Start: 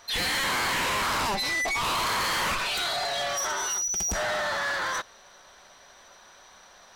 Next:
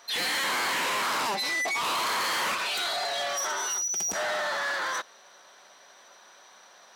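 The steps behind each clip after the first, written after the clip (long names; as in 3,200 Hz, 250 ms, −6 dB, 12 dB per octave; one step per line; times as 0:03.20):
high-pass filter 250 Hz 12 dB per octave
level −1 dB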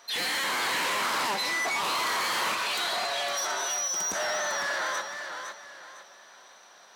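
feedback echo with a swinging delay time 506 ms, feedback 33%, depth 70 cents, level −7 dB
level −1 dB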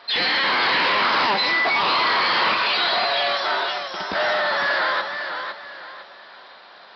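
downsampling to 11,025 Hz
level +9 dB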